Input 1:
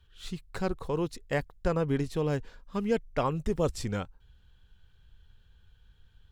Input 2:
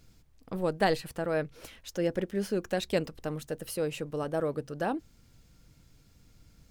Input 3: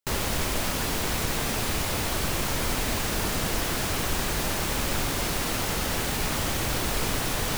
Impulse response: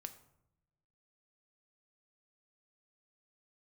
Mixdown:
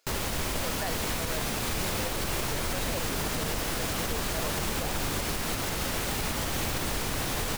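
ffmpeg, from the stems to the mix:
-filter_complex "[0:a]adelay=1200,volume=0.422[s0];[1:a]highpass=f=490:w=0.5412,highpass=f=490:w=1.3066,volume=0.794[s1];[2:a]volume=1.19,asplit=2[s2][s3];[s3]volume=0.447,aecho=0:1:488:1[s4];[s0][s1][s2][s4]amix=inputs=4:normalize=0,alimiter=limit=0.1:level=0:latency=1:release=202"

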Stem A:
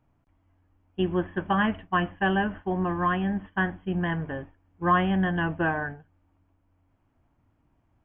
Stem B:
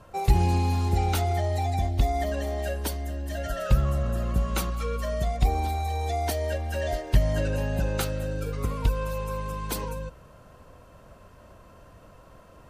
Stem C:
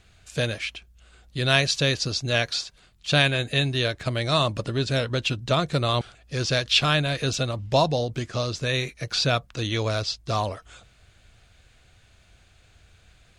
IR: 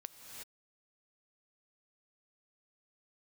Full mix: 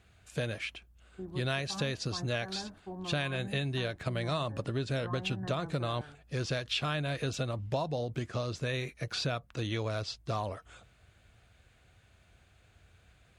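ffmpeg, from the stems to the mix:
-filter_complex "[0:a]adelay=200,volume=0.188[s0];[2:a]highpass=52,equalizer=f=5200:w=0.74:g=-7,volume=0.631[s1];[s0]asuperstop=centerf=3400:order=4:qfactor=0.53,alimiter=level_in=2.66:limit=0.0631:level=0:latency=1,volume=0.376,volume=1[s2];[s1][s2]amix=inputs=2:normalize=0,acompressor=threshold=0.0355:ratio=6"

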